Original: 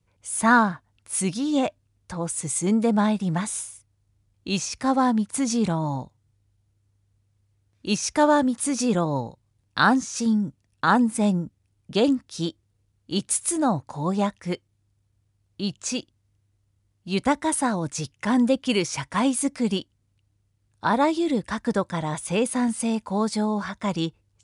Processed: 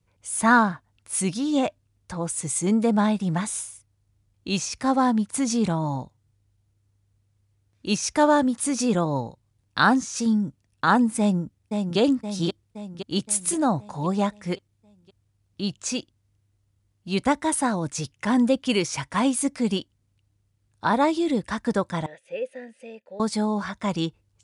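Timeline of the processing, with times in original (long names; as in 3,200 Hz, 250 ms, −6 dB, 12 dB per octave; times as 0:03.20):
0:11.19–0:11.98: delay throw 520 ms, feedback 55%, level −5 dB
0:22.06–0:23.20: formant filter e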